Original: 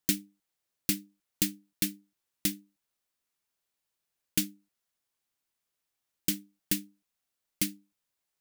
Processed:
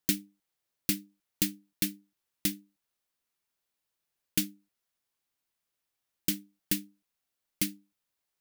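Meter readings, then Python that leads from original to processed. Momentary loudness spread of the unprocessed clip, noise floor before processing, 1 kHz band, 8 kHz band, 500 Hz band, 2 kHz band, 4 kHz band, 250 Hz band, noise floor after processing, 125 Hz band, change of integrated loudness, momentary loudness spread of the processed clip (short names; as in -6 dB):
3 LU, -85 dBFS, 0.0 dB, -1.5 dB, 0.0 dB, 0.0 dB, -0.5 dB, 0.0 dB, -85 dBFS, 0.0 dB, -0.5 dB, 3 LU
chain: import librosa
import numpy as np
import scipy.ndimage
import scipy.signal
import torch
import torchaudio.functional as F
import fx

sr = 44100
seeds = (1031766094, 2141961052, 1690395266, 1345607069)

y = fx.peak_eq(x, sr, hz=7600.0, db=-2.0, octaves=0.77)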